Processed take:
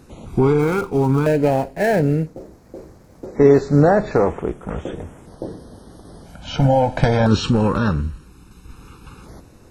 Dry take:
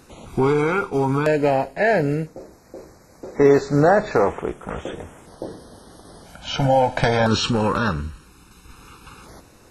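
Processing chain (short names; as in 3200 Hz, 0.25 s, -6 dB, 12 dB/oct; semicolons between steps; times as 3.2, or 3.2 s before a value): 0.59–3.26 switching dead time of 0.064 ms; low shelf 470 Hz +10 dB; gain -3.5 dB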